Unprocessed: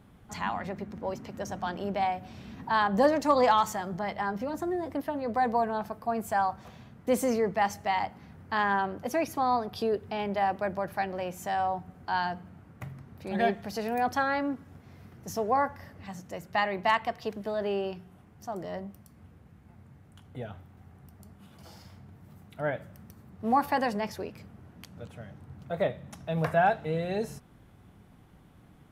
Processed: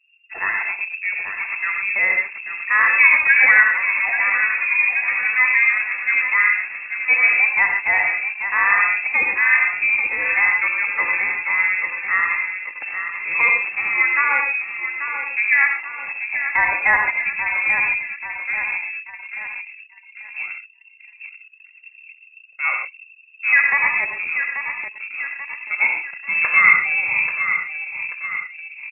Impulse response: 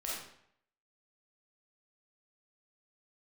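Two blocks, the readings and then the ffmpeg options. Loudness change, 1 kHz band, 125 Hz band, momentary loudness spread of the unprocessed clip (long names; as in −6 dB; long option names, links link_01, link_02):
+12.5 dB, +1.0 dB, below −10 dB, 18 LU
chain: -filter_complex "[0:a]aecho=1:1:836|1672|2508|3344|4180|5016:0.376|0.199|0.106|0.056|0.0297|0.0157,asplit=2[link_01][link_02];[1:a]atrim=start_sample=2205,atrim=end_sample=3528,asetrate=24255,aresample=44100[link_03];[link_02][link_03]afir=irnorm=-1:irlink=0,volume=-3dB[link_04];[link_01][link_04]amix=inputs=2:normalize=0,anlmdn=2.51,lowpass=frequency=2400:width_type=q:width=0.5098,lowpass=frequency=2400:width_type=q:width=0.6013,lowpass=frequency=2400:width_type=q:width=0.9,lowpass=frequency=2400:width_type=q:width=2.563,afreqshift=-2800,volume=4.5dB"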